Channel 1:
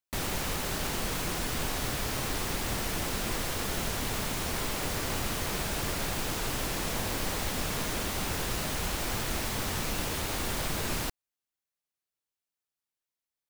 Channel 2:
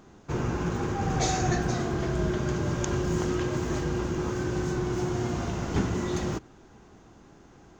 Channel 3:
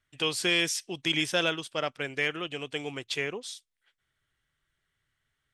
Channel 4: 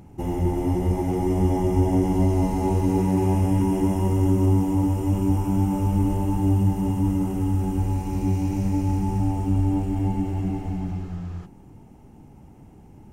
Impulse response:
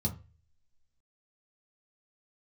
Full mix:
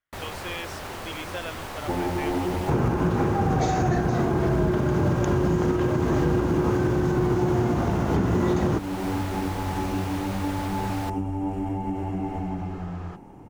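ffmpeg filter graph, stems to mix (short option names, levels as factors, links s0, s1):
-filter_complex "[0:a]equalizer=f=90:w=2.8:g=13.5,volume=0.282[s0];[1:a]equalizer=f=100:w=0.31:g=12,adelay=2400,volume=1.06[s1];[2:a]volume=0.133[s2];[3:a]acompressor=threshold=0.0501:ratio=6,adelay=1700,volume=0.668[s3];[s0][s1][s2][s3]amix=inputs=4:normalize=0,equalizer=f=880:w=0.33:g=12,alimiter=limit=0.2:level=0:latency=1:release=290"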